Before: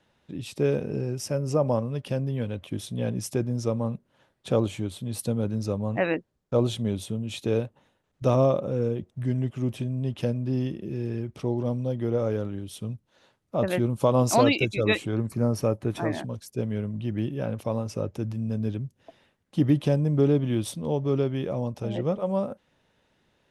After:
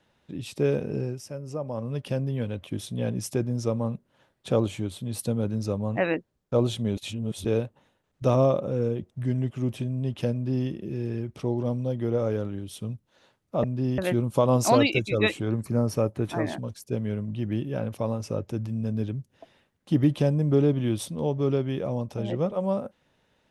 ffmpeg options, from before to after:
-filter_complex "[0:a]asplit=7[a][b][c][d][e][f][g];[a]atrim=end=1.22,asetpts=PTS-STARTPTS,afade=t=out:st=1.05:d=0.17:silence=0.354813[h];[b]atrim=start=1.22:end=1.74,asetpts=PTS-STARTPTS,volume=-9dB[i];[c]atrim=start=1.74:end=6.972,asetpts=PTS-STARTPTS,afade=t=in:d=0.17:silence=0.354813[j];[d]atrim=start=6.968:end=7.452,asetpts=PTS-STARTPTS,areverse[k];[e]atrim=start=7.448:end=13.642[l];[f]atrim=start=10.328:end=10.672[m];[g]atrim=start=13.638[n];[h][i][j]concat=n=3:v=0:a=1[o];[o][k]acrossfade=d=0.004:c1=hsin:c2=hsin[p];[p][l]acrossfade=d=0.004:c1=hsin:c2=hsin[q];[q][m]acrossfade=d=0.004:c1=hsin:c2=hsin[r];[r][n]acrossfade=d=0.004:c1=hsin:c2=hsin"

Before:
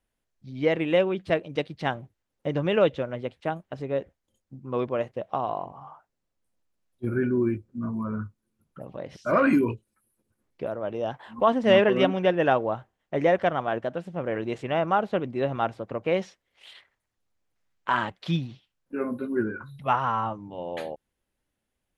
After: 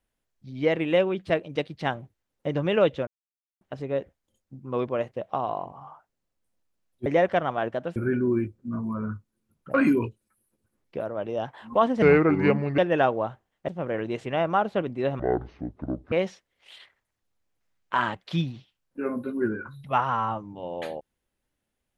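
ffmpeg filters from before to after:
-filter_complex "[0:a]asplit=11[a][b][c][d][e][f][g][h][i][j][k];[a]atrim=end=3.07,asetpts=PTS-STARTPTS,afade=t=out:st=3.066:d=0.004:c=hsin[l];[b]atrim=start=3.07:end=3.61,asetpts=PTS-STARTPTS,volume=0[m];[c]atrim=start=3.61:end=7.062,asetpts=PTS-STARTPTS,afade=t=in:d=0.004:c=hsin[n];[d]atrim=start=13.158:end=14.062[o];[e]atrim=start=7.058:end=8.842[p];[f]atrim=start=9.398:end=11.684[q];[g]atrim=start=11.68:end=12.26,asetpts=PTS-STARTPTS,asetrate=33516,aresample=44100,atrim=end_sample=33655,asetpts=PTS-STARTPTS[r];[h]atrim=start=12.256:end=13.162[s];[i]atrim=start=14.058:end=15.574[t];[j]atrim=start=15.57:end=16.07,asetpts=PTS-STARTPTS,asetrate=23814,aresample=44100,atrim=end_sample=40833,asetpts=PTS-STARTPTS[u];[k]atrim=start=16.066[v];[l][m][n]concat=n=3:v=0:a=1[w];[w][o]acrossfade=d=0.004:c1=hsin:c2=hsin[x];[x][p]acrossfade=d=0.004:c1=hsin:c2=hsin[y];[y][q]acrossfade=d=0.004:c1=hsin:c2=hsin[z];[z][r]acrossfade=d=0.004:c1=hsin:c2=hsin[aa];[aa][s]acrossfade=d=0.004:c1=hsin:c2=hsin[ab];[ab][t]acrossfade=d=0.004:c1=hsin:c2=hsin[ac];[ac][u]acrossfade=d=0.004:c1=hsin:c2=hsin[ad];[ad][v]acrossfade=d=0.004:c1=hsin:c2=hsin"

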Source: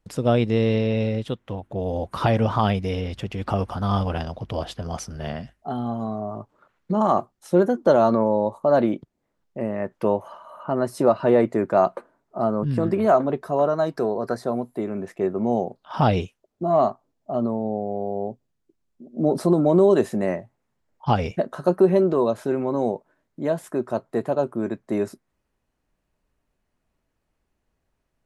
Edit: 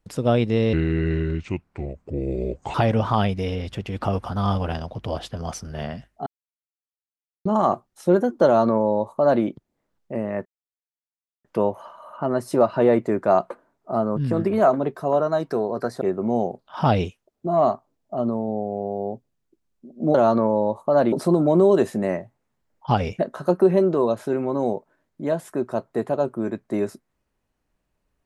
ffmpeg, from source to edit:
-filter_complex "[0:a]asplit=9[a][b][c][d][e][f][g][h][i];[a]atrim=end=0.734[j];[b]atrim=start=0.73:end=2.2,asetpts=PTS-STARTPTS,asetrate=32193,aresample=44100,atrim=end_sample=88804,asetpts=PTS-STARTPTS[k];[c]atrim=start=2.196:end=5.72,asetpts=PTS-STARTPTS,afade=t=out:st=3.52:d=0.004:c=hsin[l];[d]atrim=start=5.72:end=6.91,asetpts=PTS-STARTPTS,volume=0[m];[e]atrim=start=6.91:end=9.91,asetpts=PTS-STARTPTS,afade=t=in:d=0.004:c=hsin,afade=t=out:st=2.996:d=0.004:c=hsin,apad=pad_dur=0.99[n];[f]atrim=start=9.91:end=14.482,asetpts=PTS-STARTPTS,afade=t=in:d=0.004:c=hsin[o];[g]atrim=start=15.178:end=19.312[p];[h]atrim=start=7.908:end=8.892[q];[i]atrim=start=19.308[r];[j][k]acrossfade=d=0.004:c1=hsin:c2=hsin[s];[l][m][n][o]concat=n=4:v=0:a=1[t];[s][t]acrossfade=d=0.004:c1=hsin:c2=hsin[u];[u][p]acrossfade=d=0.004:c1=hsin:c2=hsin[v];[v][q]acrossfade=d=0.004:c1=hsin:c2=hsin[w];[w][r]acrossfade=d=0.004:c1=hsin:c2=hsin"

